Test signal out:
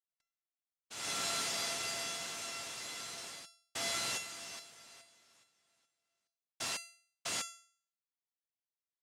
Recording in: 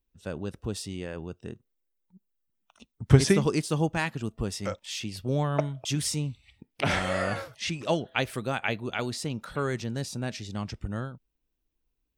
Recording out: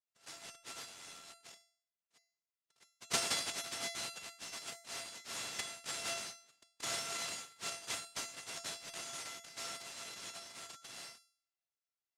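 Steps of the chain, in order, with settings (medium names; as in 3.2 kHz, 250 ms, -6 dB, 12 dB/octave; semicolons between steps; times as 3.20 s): tilt shelf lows -4.5 dB, about 1.3 kHz; noise-vocoded speech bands 1; feedback comb 680 Hz, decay 0.49 s, mix 90%; trim +4.5 dB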